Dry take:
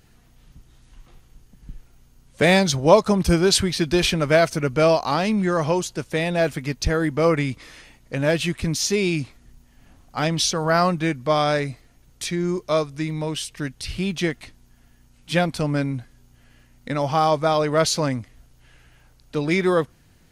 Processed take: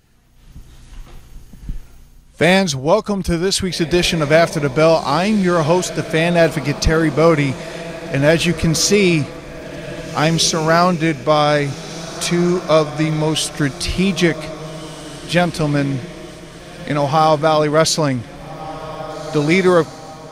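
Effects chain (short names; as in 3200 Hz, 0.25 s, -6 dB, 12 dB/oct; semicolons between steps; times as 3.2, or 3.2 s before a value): AGC gain up to 12.5 dB; on a send: diffused feedback echo 1.678 s, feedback 49%, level -14 dB; on the sum: gain -1 dB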